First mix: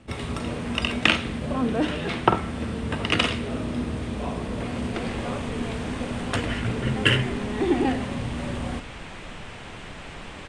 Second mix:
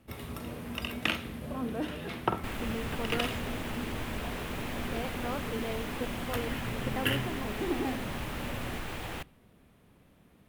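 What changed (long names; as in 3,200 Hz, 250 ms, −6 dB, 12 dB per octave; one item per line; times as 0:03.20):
first sound −11.0 dB
second sound: entry −2.50 s
master: remove elliptic low-pass filter 8,700 Hz, stop band 80 dB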